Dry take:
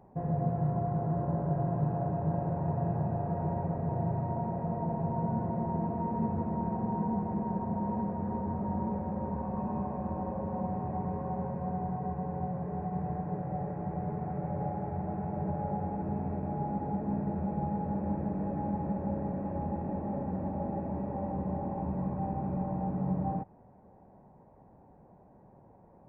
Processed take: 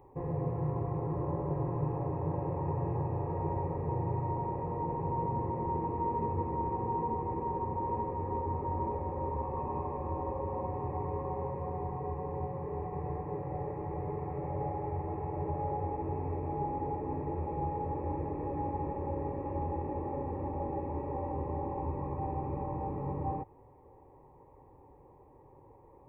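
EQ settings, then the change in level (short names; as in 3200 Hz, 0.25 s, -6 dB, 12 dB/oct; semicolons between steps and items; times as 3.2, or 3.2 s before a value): fixed phaser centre 1000 Hz, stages 8; +4.5 dB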